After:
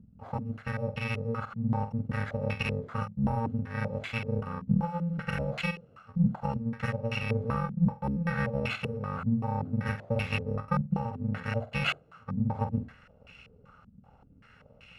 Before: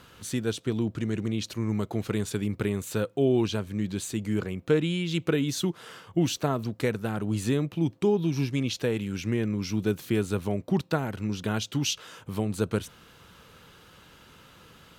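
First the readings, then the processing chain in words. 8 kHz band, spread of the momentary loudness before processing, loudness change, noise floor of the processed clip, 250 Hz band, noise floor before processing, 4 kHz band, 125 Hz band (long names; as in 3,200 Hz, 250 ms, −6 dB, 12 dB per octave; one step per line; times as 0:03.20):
below −20 dB, 6 LU, −3.0 dB, −59 dBFS, −4.5 dB, −54 dBFS, −7.0 dB, −0.5 dB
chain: samples in bit-reversed order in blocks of 128 samples
flutter between parallel walls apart 8.2 metres, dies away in 0.28 s
low-pass on a step sequencer 5.2 Hz 210–2,500 Hz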